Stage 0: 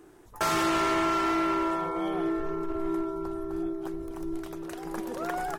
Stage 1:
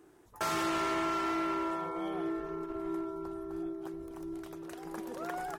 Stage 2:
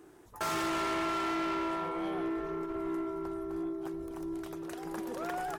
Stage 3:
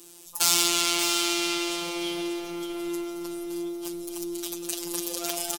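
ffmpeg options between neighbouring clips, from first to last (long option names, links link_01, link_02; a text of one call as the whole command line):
ffmpeg -i in.wav -af "highpass=frequency=57:poles=1,volume=-6dB" out.wav
ffmpeg -i in.wav -af "asoftclip=type=tanh:threshold=-33.5dB,volume=4dB" out.wav
ffmpeg -i in.wav -af "afftfilt=real='hypot(re,im)*cos(PI*b)':imag='0':win_size=1024:overlap=0.75,aexciter=amount=6.4:drive=8.5:freq=2600,aecho=1:1:583:0.355,volume=2.5dB" out.wav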